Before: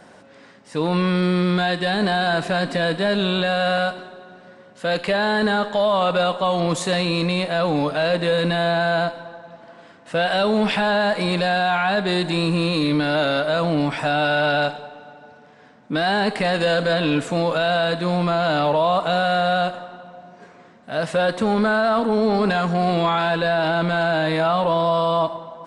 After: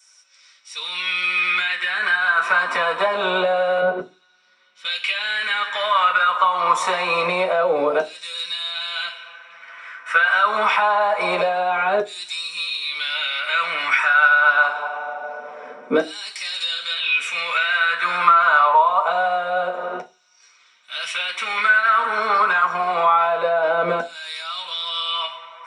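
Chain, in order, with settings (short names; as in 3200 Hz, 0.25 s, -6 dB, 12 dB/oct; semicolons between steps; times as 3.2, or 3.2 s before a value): LFO high-pass saw down 0.25 Hz 430–6300 Hz; compressor 12:1, threshold -25 dBFS, peak gain reduction 14.5 dB; 3.81–4.85 RIAA curve playback; reverb RT60 0.25 s, pre-delay 3 ms, DRR 0.5 dB; gain -1.5 dB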